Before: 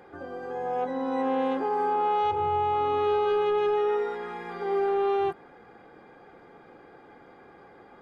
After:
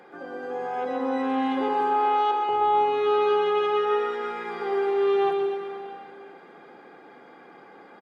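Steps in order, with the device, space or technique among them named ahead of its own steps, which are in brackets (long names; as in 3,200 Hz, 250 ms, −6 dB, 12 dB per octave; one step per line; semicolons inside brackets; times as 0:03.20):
0:01.68–0:02.49: high-pass filter 310 Hz 24 dB per octave
PA in a hall (high-pass filter 160 Hz 24 dB per octave; parametric band 2,900 Hz +3.5 dB 2.8 octaves; single-tap delay 124 ms −7.5 dB; convolution reverb RT60 2.5 s, pre-delay 110 ms, DRR 5 dB)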